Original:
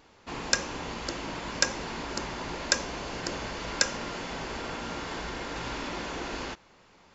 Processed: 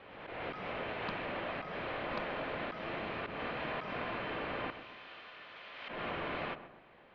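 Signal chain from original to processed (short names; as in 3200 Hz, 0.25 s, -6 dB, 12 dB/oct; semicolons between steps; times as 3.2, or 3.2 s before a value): 4.7–5.89 differentiator; mistuned SSB -360 Hz 560–3500 Hz; auto swell 0.159 s; on a send: darkening echo 0.129 s, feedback 46%, low-pass 1500 Hz, level -11 dB; on the sum: backwards sustainer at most 37 dB/s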